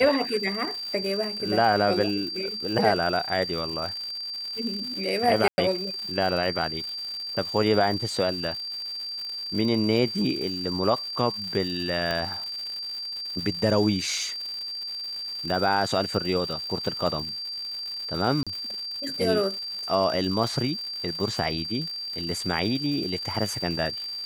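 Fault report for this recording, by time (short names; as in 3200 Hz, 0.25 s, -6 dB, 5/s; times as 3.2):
crackle 220/s -33 dBFS
tone 4700 Hz -31 dBFS
5.48–5.58 gap 0.1 s
12.11 pop -14 dBFS
18.43–18.47 gap 36 ms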